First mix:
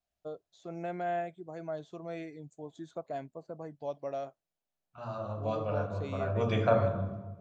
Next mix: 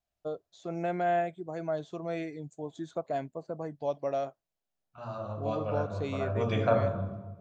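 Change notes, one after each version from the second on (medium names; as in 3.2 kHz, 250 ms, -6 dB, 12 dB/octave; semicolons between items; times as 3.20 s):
first voice +5.5 dB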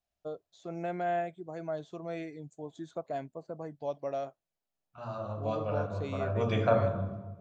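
first voice -3.5 dB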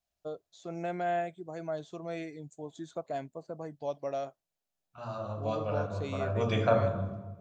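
master: add treble shelf 4.3 kHz +7.5 dB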